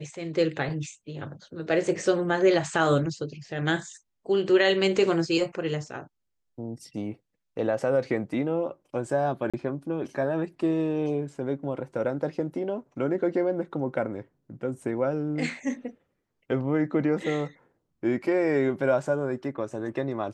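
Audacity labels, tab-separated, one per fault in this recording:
9.500000	9.540000	drop-out 36 ms

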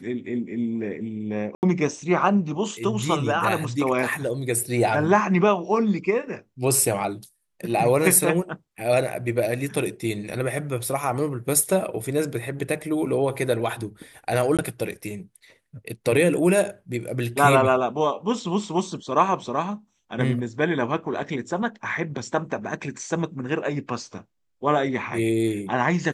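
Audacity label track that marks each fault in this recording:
1.550000	1.630000	drop-out 79 ms
14.570000	14.590000	drop-out 17 ms

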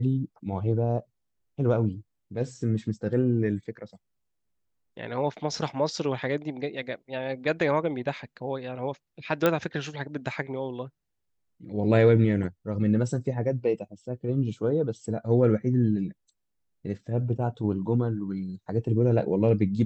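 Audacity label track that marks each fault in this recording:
9.460000	9.460000	click −9 dBFS

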